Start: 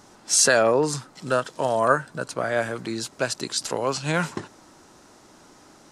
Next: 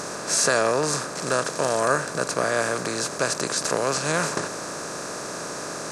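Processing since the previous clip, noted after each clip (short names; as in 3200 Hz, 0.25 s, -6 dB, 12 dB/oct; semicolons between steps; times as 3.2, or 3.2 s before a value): per-bin compression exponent 0.4; gain -6 dB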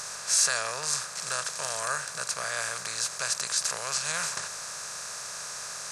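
passive tone stack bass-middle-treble 10-0-10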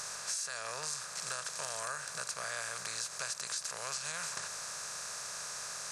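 compressor 12:1, threshold -30 dBFS, peak gain reduction 12 dB; gain -4 dB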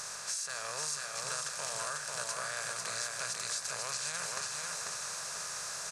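feedback echo 0.494 s, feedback 42%, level -3 dB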